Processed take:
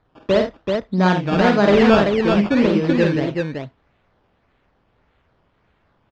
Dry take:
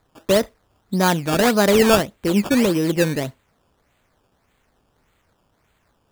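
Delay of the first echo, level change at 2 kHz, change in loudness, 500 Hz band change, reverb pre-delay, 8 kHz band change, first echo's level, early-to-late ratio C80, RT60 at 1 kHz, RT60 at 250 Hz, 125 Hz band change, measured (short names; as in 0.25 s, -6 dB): 49 ms, +1.5 dB, +1.0 dB, +2.0 dB, none, under -15 dB, -5.5 dB, none, none, none, +3.0 dB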